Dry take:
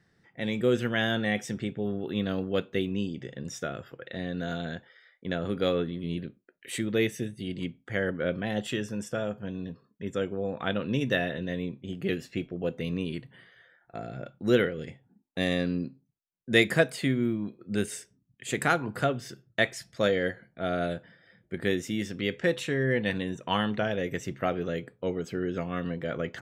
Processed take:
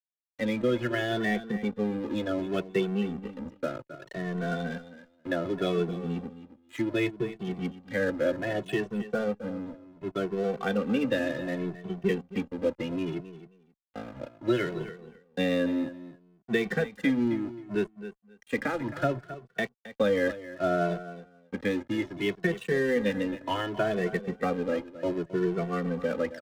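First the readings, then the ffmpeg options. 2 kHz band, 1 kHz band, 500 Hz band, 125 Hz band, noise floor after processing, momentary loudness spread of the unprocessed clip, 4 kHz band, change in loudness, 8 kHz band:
-2.5 dB, 0.0 dB, +1.0 dB, -2.5 dB, -66 dBFS, 12 LU, -5.0 dB, 0.0 dB, no reading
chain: -filter_complex "[0:a]acrossover=split=4000[s0][s1];[s1]acompressor=threshold=0.00282:ratio=4:attack=1:release=60[s2];[s0][s2]amix=inputs=2:normalize=0,afftdn=nr=15:nf=-37,highpass=130,highshelf=f=8500:g=-10,acrossover=split=210[s3][s4];[s4]alimiter=limit=0.126:level=0:latency=1:release=146[s5];[s3][s5]amix=inputs=2:normalize=0,acrossover=split=200|610[s6][s7][s8];[s6]acompressor=threshold=0.01:ratio=4[s9];[s7]acompressor=threshold=0.0355:ratio=4[s10];[s8]acompressor=threshold=0.0224:ratio=4[s11];[s9][s10][s11]amix=inputs=3:normalize=0,aeval=exprs='sgn(val(0))*max(abs(val(0))-0.00596,0)':c=same,asplit=2[s12][s13];[s13]aecho=0:1:267|534:0.2|0.0319[s14];[s12][s14]amix=inputs=2:normalize=0,asplit=2[s15][s16];[s16]adelay=2.2,afreqshift=0.66[s17];[s15][s17]amix=inputs=2:normalize=1,volume=2.51"

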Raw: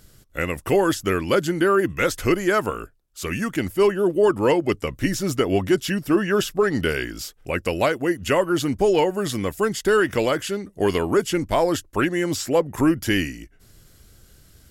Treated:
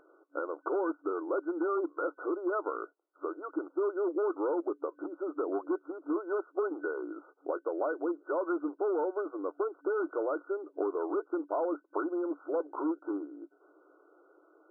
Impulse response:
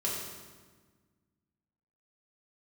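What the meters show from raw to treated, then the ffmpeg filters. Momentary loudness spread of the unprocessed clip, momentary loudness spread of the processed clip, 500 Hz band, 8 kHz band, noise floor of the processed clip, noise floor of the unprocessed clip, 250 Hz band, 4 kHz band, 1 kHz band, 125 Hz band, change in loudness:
8 LU, 8 LU, -11.0 dB, under -40 dB, -68 dBFS, -54 dBFS, -12.0 dB, under -40 dB, -11.0 dB, under -40 dB, -12.0 dB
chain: -af "volume=6.68,asoftclip=hard,volume=0.15,acompressor=threshold=0.0316:ratio=12,afftfilt=real='re*between(b*sr/4096,280,1500)':imag='im*between(b*sr/4096,280,1500)':win_size=4096:overlap=0.75,volume=1.26"

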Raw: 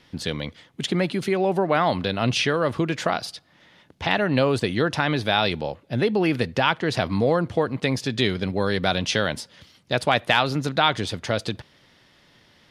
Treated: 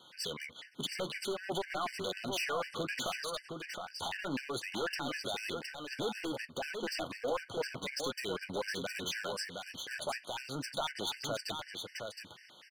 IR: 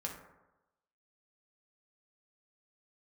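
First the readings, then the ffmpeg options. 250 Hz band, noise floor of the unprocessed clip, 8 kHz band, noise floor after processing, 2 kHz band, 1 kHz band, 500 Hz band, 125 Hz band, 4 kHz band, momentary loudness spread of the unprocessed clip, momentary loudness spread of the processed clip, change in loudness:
-18.0 dB, -58 dBFS, -5.5 dB, -58 dBFS, -13.0 dB, -15.5 dB, -15.0 dB, -22.0 dB, -11.0 dB, 9 LU, 6 LU, -14.5 dB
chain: -filter_complex "[0:a]highpass=f=820:p=1,asplit=2[s0][s1];[s1]acompressor=threshold=0.02:ratio=6,volume=1.19[s2];[s0][s2]amix=inputs=2:normalize=0,alimiter=limit=0.188:level=0:latency=1:release=152,asoftclip=type=hard:threshold=0.0473,flanger=delay=5.4:depth=6.6:regen=-51:speed=0.64:shape=sinusoidal,asplit=2[s3][s4];[s4]aecho=0:1:715:0.531[s5];[s3][s5]amix=inputs=2:normalize=0,afftfilt=real='re*gt(sin(2*PI*4*pts/sr)*(1-2*mod(floor(b*sr/1024/1500),2)),0)':imag='im*gt(sin(2*PI*4*pts/sr)*(1-2*mod(floor(b*sr/1024/1500),2)),0)':win_size=1024:overlap=0.75"

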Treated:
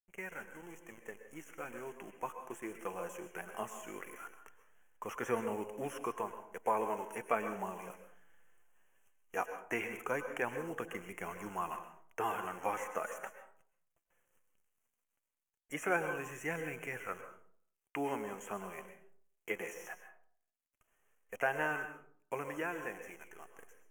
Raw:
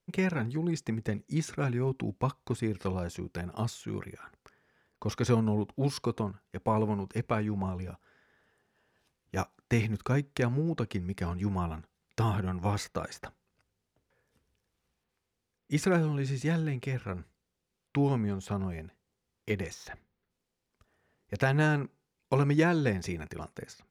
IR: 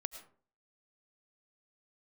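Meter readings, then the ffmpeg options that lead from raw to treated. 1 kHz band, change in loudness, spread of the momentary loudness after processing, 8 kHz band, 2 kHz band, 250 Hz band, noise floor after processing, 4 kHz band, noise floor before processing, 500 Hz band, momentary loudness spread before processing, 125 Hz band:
-1.5 dB, -8.0 dB, 15 LU, -6.0 dB, -2.0 dB, -14.5 dB, under -85 dBFS, -11.0 dB, -84 dBFS, -5.5 dB, 15 LU, -24.0 dB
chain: -filter_complex "[0:a]acrossover=split=2800[s0][s1];[s1]acompressor=threshold=0.00316:ratio=4:attack=1:release=60[s2];[s0][s2]amix=inputs=2:normalize=0,highpass=520,highshelf=f=9000:g=9,dynaudnorm=f=480:g=11:m=2.99,acrusher=bits=8:dc=4:mix=0:aa=0.000001,flanger=delay=0.4:depth=5.5:regen=65:speed=0.18:shape=sinusoidal,asuperstop=centerf=4300:order=8:qfactor=1.5[s3];[1:a]atrim=start_sample=2205,asetrate=35721,aresample=44100[s4];[s3][s4]afir=irnorm=-1:irlink=0,volume=0.596"

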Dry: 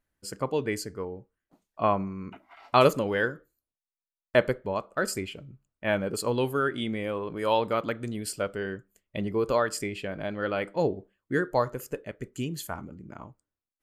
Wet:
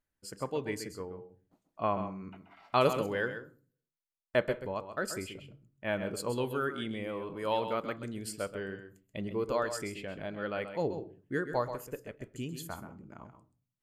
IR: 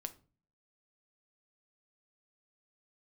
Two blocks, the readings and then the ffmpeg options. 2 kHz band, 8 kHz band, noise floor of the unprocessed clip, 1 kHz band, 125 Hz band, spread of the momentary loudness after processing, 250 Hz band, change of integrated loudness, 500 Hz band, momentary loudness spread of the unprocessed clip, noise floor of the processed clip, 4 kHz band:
-6.0 dB, -6.0 dB, under -85 dBFS, -6.0 dB, -6.0 dB, 14 LU, -6.0 dB, -6.0 dB, -6.0 dB, 15 LU, under -85 dBFS, -6.0 dB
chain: -filter_complex "[0:a]asplit=2[s0][s1];[1:a]atrim=start_sample=2205,adelay=131[s2];[s1][s2]afir=irnorm=-1:irlink=0,volume=0.473[s3];[s0][s3]amix=inputs=2:normalize=0,volume=0.473"

